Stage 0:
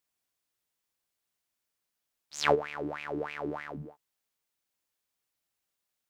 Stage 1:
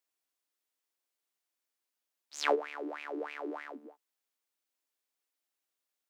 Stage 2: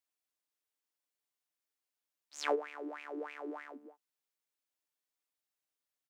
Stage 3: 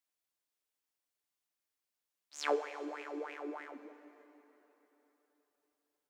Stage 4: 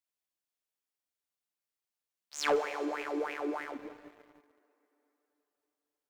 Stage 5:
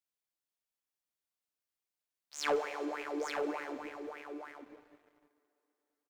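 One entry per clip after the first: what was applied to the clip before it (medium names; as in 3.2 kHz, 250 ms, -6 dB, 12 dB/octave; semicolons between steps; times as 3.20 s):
steep high-pass 240 Hz 72 dB/octave; trim -3.5 dB
comb 6.7 ms, depth 39%; trim -5 dB
plate-style reverb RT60 3.9 s, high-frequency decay 0.85×, DRR 11 dB
waveshaping leveller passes 2
delay 871 ms -6.5 dB; trim -3 dB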